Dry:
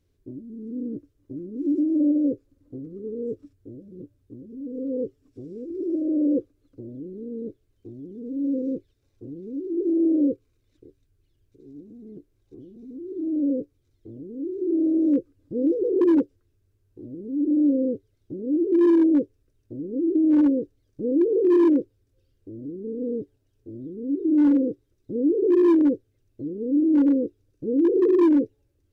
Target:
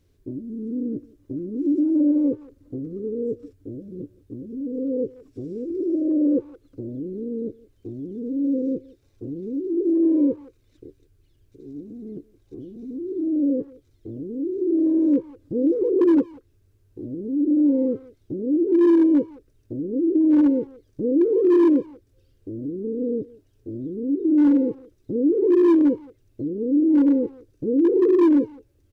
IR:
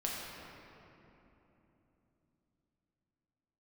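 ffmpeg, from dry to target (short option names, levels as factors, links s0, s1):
-filter_complex "[0:a]asplit=2[s0][s1];[s1]acompressor=threshold=0.0178:ratio=4,volume=1.12[s2];[s0][s2]amix=inputs=2:normalize=0,asplit=2[s3][s4];[s4]adelay=170,highpass=300,lowpass=3400,asoftclip=type=hard:threshold=0.0944,volume=0.1[s5];[s3][s5]amix=inputs=2:normalize=0"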